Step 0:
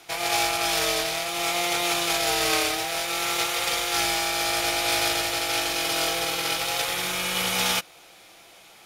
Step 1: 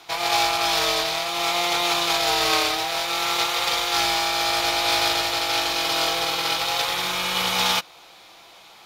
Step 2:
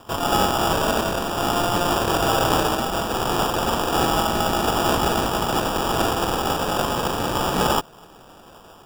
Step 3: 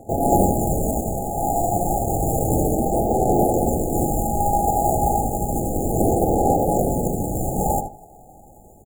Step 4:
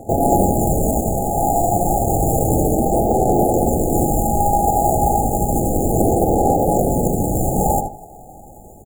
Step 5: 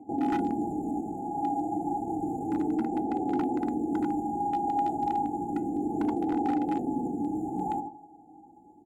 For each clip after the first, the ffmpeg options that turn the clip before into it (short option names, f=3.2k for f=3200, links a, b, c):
-af "equalizer=f=1k:t=o:w=0.67:g=8,equalizer=f=4k:t=o:w=0.67:g=6,equalizer=f=10k:t=o:w=0.67:g=-6"
-af "acrusher=samples=21:mix=1:aa=0.000001,volume=1.5dB"
-filter_complex "[0:a]aphaser=in_gain=1:out_gain=1:delay=1.3:decay=0.51:speed=0.31:type=sinusoidal,afftfilt=real='re*(1-between(b*sr/4096,860,6300))':imag='im*(1-between(b*sr/4096,860,6300))':win_size=4096:overlap=0.75,asplit=2[a][b];[b]adelay=77,lowpass=f=3k:p=1,volume=-7dB,asplit=2[c][d];[d]adelay=77,lowpass=f=3k:p=1,volume=0.25,asplit=2[e][f];[f]adelay=77,lowpass=f=3k:p=1,volume=0.25[g];[a][c][e][g]amix=inputs=4:normalize=0"
-af "acompressor=threshold=-21dB:ratio=2,volume=6.5dB"
-filter_complex "[0:a]asplit=3[a][b][c];[a]bandpass=f=300:t=q:w=8,volume=0dB[d];[b]bandpass=f=870:t=q:w=8,volume=-6dB[e];[c]bandpass=f=2.24k:t=q:w=8,volume=-9dB[f];[d][e][f]amix=inputs=3:normalize=0,aeval=exprs='0.106*(abs(mod(val(0)/0.106+3,4)-2)-1)':c=same,flanger=delay=3.8:depth=2.4:regen=84:speed=0.3:shape=sinusoidal,volume=3.5dB"